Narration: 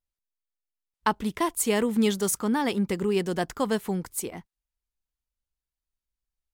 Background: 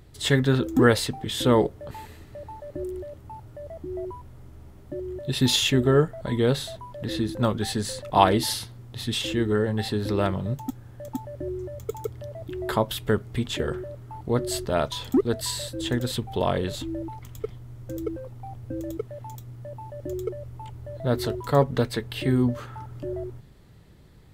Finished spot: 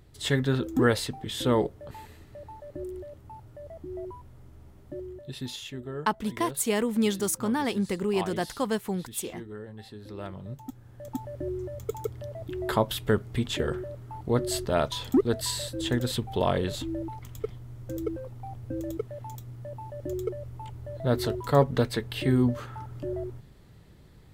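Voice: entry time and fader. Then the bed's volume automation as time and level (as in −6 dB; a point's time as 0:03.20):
5.00 s, −2.0 dB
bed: 0:05.00 −4.5 dB
0:05.56 −17.5 dB
0:09.98 −17.5 dB
0:11.24 −1 dB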